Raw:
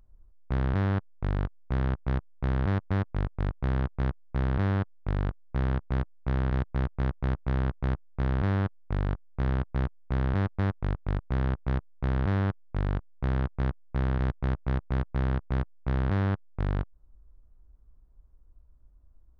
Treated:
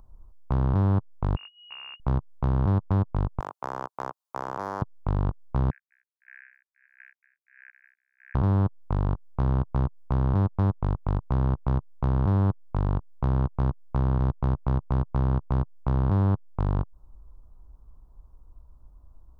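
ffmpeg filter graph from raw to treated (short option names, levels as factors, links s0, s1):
-filter_complex "[0:a]asettb=1/sr,asplit=3[s0][s1][s2];[s0]atrim=end=1.364[s3];[s1]atrim=start=1.36:end=2,asetpts=PTS-STARTPTS,afade=t=in:d=0.004:c=qsin,afade=t=out:st=0.636:d=0.004:c=qsin,acompressor=threshold=0.00794:ratio=5:attack=3.2:release=140:knee=1:detection=peak,volume=56.2,asoftclip=hard,volume=0.0178,lowpass=f=2500:t=q:w=0.5098,lowpass=f=2500:t=q:w=0.6013,lowpass=f=2500:t=q:w=0.9,lowpass=f=2500:t=q:w=2.563,afreqshift=-2900[s4];[s2]atrim=start=1.996[s5];[s3][s4]acrossfade=d=0.004:c1=hsin:c2=qsin[s6];[s6][s5]acrossfade=d=0.004:c1=qsin:c2=hsin,asettb=1/sr,asplit=3[s7][s8][s9];[s7]atrim=end=3.404[s10];[s8]atrim=start=3.4:end=4.82,asetpts=PTS-STARTPTS,afade=t=in:d=0.004:c=qsin,afade=t=out:st=1.416:d=0.004:c=qsin,highpass=620,asoftclip=type=hard:threshold=0.0531[s11];[s9]atrim=start=4.816[s12];[s10][s11]acrossfade=d=0.004:c1=hsin:c2=qsin[s13];[s13][s12]acrossfade=d=0.004:c1=qsin:c2=hsin,asettb=1/sr,asplit=3[s14][s15][s16];[s14]atrim=end=5.704[s17];[s15]atrim=start=5.7:end=8.35,asetpts=PTS-STARTPTS,afade=t=in:d=0.004:c=qsin,afade=t=out:st=2.646:d=0.004:c=qsin,asuperpass=centerf=2000:order=12:qfactor=2.2,aecho=1:1:504:0.355,atrim=end_sample=116865,aeval=exprs='val(0)*pow(10,-22*(0.5-0.5*cos(2*PI*1.5*n/s))/20)':c=same[s18];[s16]atrim=start=8.346[s19];[s17][s18]acrossfade=d=0.004:c1=hsin:c2=qsin[s20];[s20][s19]acrossfade=d=0.004:c1=qsin:c2=hsin,acrossover=split=490[s21][s22];[s22]acompressor=threshold=0.01:ratio=4[s23];[s21][s23]amix=inputs=2:normalize=0,alimiter=limit=0.0631:level=0:latency=1:release=137,equalizer=f=125:t=o:w=1:g=3,equalizer=f=1000:t=o:w=1:g=11,equalizer=f=2000:t=o:w=1:g=-11,volume=2.11"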